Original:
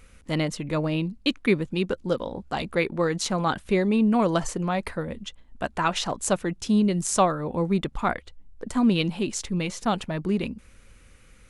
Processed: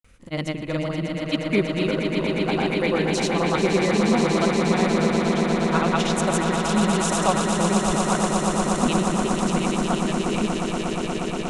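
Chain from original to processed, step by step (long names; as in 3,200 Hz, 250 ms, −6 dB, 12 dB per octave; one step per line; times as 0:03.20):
granular cloud, pitch spread up and down by 0 semitones
echo that builds up and dies away 119 ms, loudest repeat 8, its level −7 dB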